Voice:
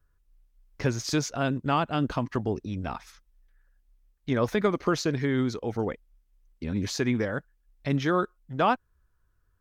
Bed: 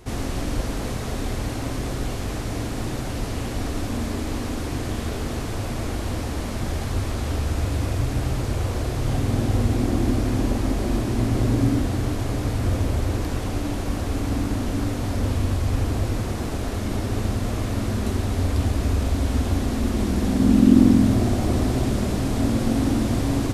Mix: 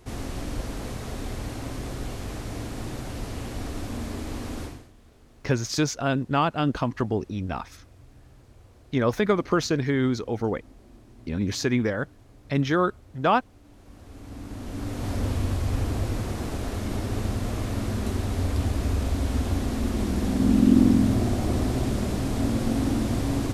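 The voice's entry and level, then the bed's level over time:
4.65 s, +2.5 dB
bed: 0:04.64 −6 dB
0:04.92 −28 dB
0:13.60 −28 dB
0:15.09 −3.5 dB

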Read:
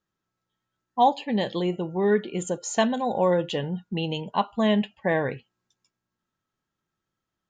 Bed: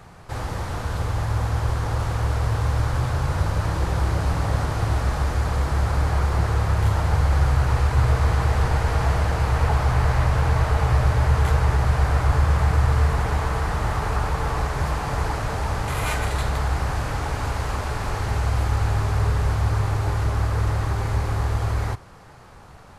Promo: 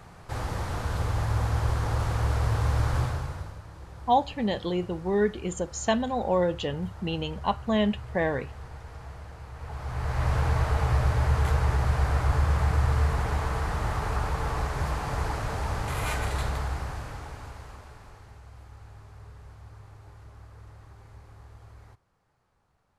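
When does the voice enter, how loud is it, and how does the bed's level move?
3.10 s, −2.5 dB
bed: 0:03.01 −3 dB
0:03.64 −21.5 dB
0:09.54 −21.5 dB
0:10.30 −5 dB
0:16.44 −5 dB
0:18.41 −26 dB

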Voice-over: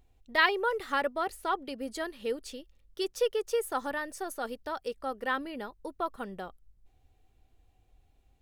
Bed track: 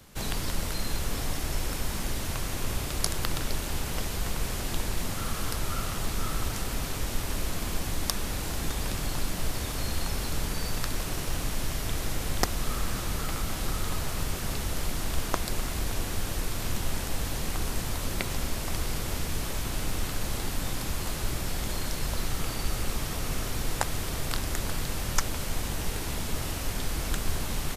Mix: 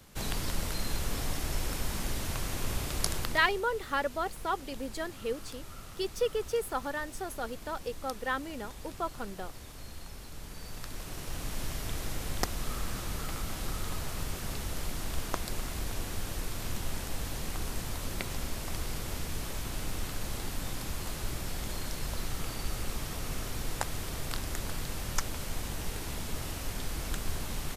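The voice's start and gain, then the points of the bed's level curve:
3.00 s, −1.5 dB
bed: 0:03.16 −2.5 dB
0:03.65 −15 dB
0:10.32 −15 dB
0:11.61 −5 dB

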